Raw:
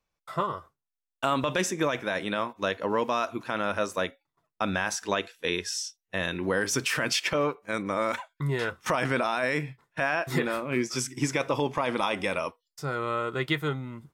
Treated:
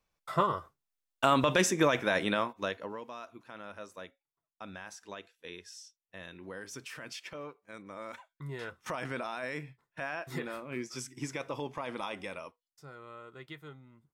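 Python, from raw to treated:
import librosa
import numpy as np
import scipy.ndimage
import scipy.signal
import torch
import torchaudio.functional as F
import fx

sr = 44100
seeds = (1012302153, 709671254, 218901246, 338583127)

y = fx.gain(x, sr, db=fx.line((2.27, 1.0), (2.79, -8.0), (3.0, -17.0), (7.84, -17.0), (8.76, -10.5), (12.12, -10.5), (13.0, -19.0)))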